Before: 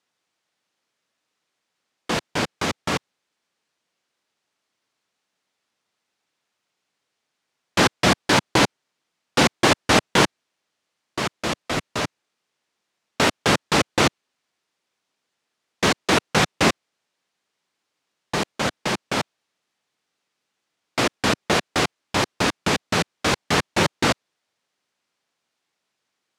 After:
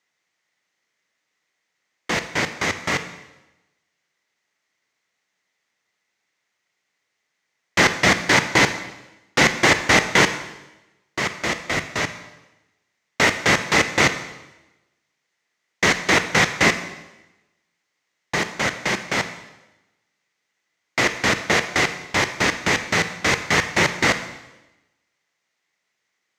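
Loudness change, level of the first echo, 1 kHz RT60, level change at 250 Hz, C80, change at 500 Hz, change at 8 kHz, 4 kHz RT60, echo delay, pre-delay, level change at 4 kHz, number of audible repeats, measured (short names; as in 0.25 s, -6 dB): +2.5 dB, none, 0.95 s, -1.5 dB, 13.0 dB, -0.5 dB, +2.0 dB, 0.95 s, none, 22 ms, +0.5 dB, none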